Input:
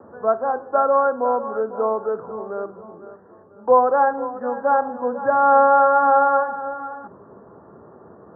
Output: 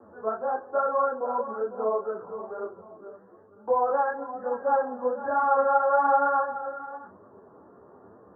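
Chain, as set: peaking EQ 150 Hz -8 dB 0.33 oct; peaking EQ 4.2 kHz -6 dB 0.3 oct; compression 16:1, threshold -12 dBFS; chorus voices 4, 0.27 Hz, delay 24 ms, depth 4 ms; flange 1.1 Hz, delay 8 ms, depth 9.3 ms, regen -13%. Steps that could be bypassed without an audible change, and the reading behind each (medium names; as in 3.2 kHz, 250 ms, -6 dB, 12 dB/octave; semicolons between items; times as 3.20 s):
peaking EQ 4.2 kHz: input has nothing above 1.7 kHz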